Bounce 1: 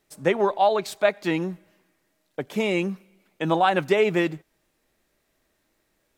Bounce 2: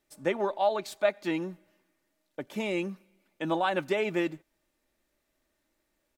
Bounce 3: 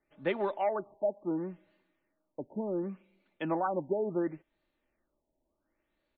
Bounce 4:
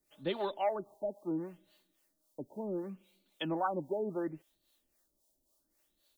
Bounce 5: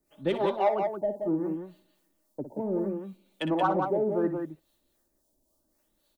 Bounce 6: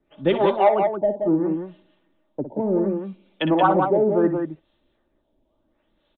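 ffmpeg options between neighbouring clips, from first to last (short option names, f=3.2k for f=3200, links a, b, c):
-af "aecho=1:1:3.4:0.35,volume=-7dB"
-filter_complex "[0:a]acrossover=split=440|1200[a][b][c];[b]asoftclip=type=tanh:threshold=-25dB[d];[a][d][c]amix=inputs=3:normalize=0,afftfilt=real='re*lt(b*sr/1024,970*pow(4700/970,0.5+0.5*sin(2*PI*0.7*pts/sr)))':imag='im*lt(b*sr/1024,970*pow(4700/970,0.5+0.5*sin(2*PI*0.7*pts/sr)))':win_size=1024:overlap=0.75,volume=-2dB"
-filter_complex "[0:a]acrossover=split=440[a][b];[a]aeval=exprs='val(0)*(1-0.7/2+0.7/2*cos(2*PI*3.7*n/s))':c=same[c];[b]aeval=exprs='val(0)*(1-0.7/2-0.7/2*cos(2*PI*3.7*n/s))':c=same[d];[c][d]amix=inputs=2:normalize=0,aexciter=amount=9.6:drive=4.3:freq=3.3k"
-filter_complex "[0:a]asplit=2[a][b];[b]adynamicsmooth=sensitivity=4:basefreq=1.6k,volume=2.5dB[c];[a][c]amix=inputs=2:normalize=0,aecho=1:1:58.31|177.8:0.316|0.562"
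-af "aresample=8000,aresample=44100,volume=8dB"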